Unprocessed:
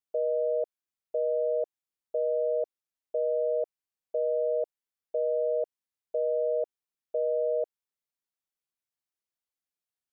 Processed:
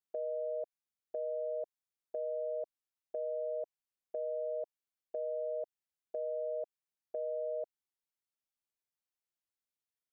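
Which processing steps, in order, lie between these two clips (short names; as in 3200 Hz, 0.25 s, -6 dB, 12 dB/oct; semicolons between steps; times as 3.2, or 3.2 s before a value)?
dynamic EQ 460 Hz, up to -7 dB, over -42 dBFS, Q 2; gain -5 dB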